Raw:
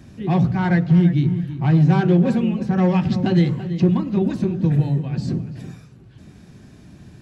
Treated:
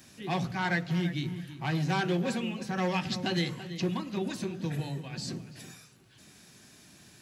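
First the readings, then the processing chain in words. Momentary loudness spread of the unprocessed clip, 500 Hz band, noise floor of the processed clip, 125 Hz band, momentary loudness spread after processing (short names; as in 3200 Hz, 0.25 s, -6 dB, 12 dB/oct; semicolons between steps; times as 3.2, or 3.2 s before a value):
9 LU, -10.5 dB, -57 dBFS, -16.0 dB, 9 LU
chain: tilt +4 dB/oct; gain -5.5 dB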